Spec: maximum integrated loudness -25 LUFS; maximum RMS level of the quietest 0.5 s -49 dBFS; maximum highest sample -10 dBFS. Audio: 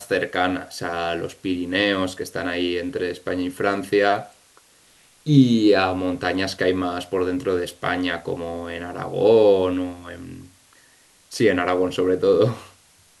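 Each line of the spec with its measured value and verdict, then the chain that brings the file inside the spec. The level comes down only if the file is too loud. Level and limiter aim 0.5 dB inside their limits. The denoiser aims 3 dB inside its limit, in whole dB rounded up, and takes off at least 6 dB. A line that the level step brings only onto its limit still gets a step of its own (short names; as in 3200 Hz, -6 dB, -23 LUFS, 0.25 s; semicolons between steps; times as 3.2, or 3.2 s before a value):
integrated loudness -21.5 LUFS: fail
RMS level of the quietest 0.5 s -55 dBFS: OK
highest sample -2.5 dBFS: fail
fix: gain -4 dB; limiter -10.5 dBFS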